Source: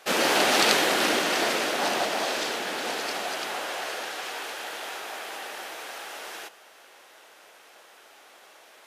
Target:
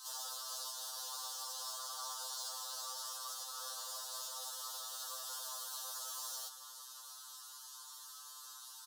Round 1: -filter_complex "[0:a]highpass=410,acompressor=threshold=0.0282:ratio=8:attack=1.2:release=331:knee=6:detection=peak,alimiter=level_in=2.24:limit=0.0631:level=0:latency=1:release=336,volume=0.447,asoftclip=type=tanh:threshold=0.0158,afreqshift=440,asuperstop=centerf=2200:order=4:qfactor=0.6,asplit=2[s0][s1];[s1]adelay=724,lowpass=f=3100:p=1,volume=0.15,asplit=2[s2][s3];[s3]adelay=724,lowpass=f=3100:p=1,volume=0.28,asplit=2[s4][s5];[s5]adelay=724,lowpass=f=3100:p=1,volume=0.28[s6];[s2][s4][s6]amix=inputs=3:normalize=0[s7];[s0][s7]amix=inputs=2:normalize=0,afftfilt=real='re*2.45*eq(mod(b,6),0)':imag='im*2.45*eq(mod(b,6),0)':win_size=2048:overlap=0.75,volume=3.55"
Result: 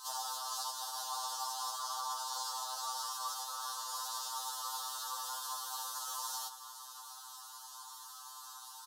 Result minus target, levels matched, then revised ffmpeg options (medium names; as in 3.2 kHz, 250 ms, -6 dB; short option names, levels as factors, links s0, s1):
1 kHz band +6.5 dB; saturation: distortion -8 dB
-filter_complex "[0:a]highpass=960,acompressor=threshold=0.0282:ratio=8:attack=1.2:release=331:knee=6:detection=peak,alimiter=level_in=2.24:limit=0.0631:level=0:latency=1:release=336,volume=0.447,asoftclip=type=tanh:threshold=0.00631,afreqshift=440,asuperstop=centerf=2200:order=4:qfactor=0.6,asplit=2[s0][s1];[s1]adelay=724,lowpass=f=3100:p=1,volume=0.15,asplit=2[s2][s3];[s3]adelay=724,lowpass=f=3100:p=1,volume=0.28,asplit=2[s4][s5];[s5]adelay=724,lowpass=f=3100:p=1,volume=0.28[s6];[s2][s4][s6]amix=inputs=3:normalize=0[s7];[s0][s7]amix=inputs=2:normalize=0,afftfilt=real='re*2.45*eq(mod(b,6),0)':imag='im*2.45*eq(mod(b,6),0)':win_size=2048:overlap=0.75,volume=3.55"